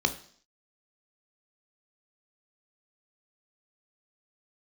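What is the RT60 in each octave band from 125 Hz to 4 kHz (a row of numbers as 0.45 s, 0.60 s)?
0.50 s, 0.55 s, 0.55 s, 0.55 s, 0.55 s, 0.65 s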